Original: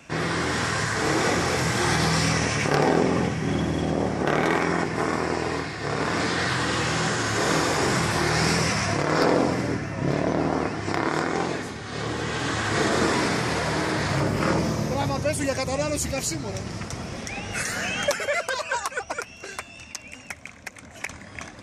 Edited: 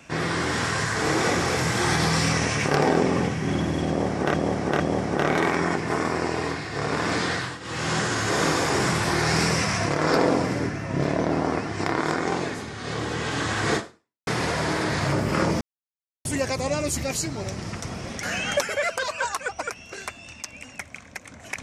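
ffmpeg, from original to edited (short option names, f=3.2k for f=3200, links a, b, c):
-filter_complex "[0:a]asplit=8[a][b][c][d][e][f][g][h];[a]atrim=end=4.342[i];[b]atrim=start=3.878:end=4.342[j];[c]atrim=start=3.878:end=6.68,asetpts=PTS-STARTPTS,afade=t=out:st=2.472:d=0.33:silence=0.149624[k];[d]atrim=start=6.68:end=13.35,asetpts=PTS-STARTPTS,afade=t=in:d=0.33:silence=0.149624,afade=t=out:st=6.16:d=0.51:c=exp[l];[e]atrim=start=13.35:end=14.69,asetpts=PTS-STARTPTS,afade=t=in:d=0.004:c=hsin,afade=t=out:st=1.336:d=0.004:c=hsin[m];[f]atrim=start=14.69:end=15.33,asetpts=PTS-STARTPTS,volume=0[n];[g]atrim=start=15.33:end=17.312,asetpts=PTS-STARTPTS,afade=t=in:d=0.004:c=hsin[o];[h]atrim=start=17.738[p];[i][j]acrossfade=d=0.004:c1=hsin:c2=hsin[q];[k][l][m][n][o]concat=n=5:v=0:a=1[r];[q][r]acrossfade=d=0.004:c1=hsin:c2=hsin[s];[s][p]acrossfade=d=0.004:c1=hsin:c2=hsin"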